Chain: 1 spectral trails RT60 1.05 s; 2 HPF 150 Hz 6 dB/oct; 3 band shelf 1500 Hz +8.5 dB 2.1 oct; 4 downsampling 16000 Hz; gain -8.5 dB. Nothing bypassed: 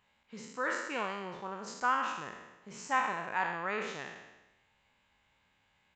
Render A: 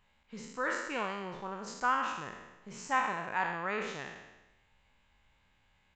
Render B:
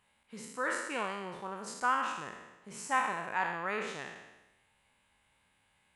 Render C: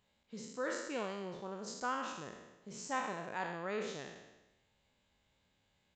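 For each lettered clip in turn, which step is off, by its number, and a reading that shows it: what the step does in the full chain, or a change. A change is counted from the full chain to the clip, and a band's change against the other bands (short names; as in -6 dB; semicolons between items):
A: 2, 125 Hz band +2.5 dB; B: 4, 8 kHz band +3.5 dB; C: 3, momentary loudness spread change -5 LU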